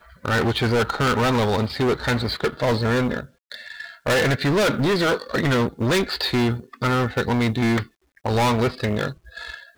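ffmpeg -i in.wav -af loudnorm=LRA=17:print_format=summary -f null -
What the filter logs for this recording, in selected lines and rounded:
Input Integrated:    -22.0 LUFS
Input True Peak:     -14.7 dBTP
Input LRA:             2.5 LU
Input Threshold:     -32.5 LUFS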